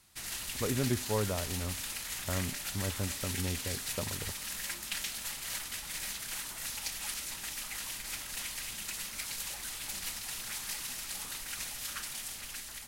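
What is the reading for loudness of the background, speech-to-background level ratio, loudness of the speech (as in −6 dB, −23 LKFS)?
−37.0 LKFS, 0.0 dB, −37.0 LKFS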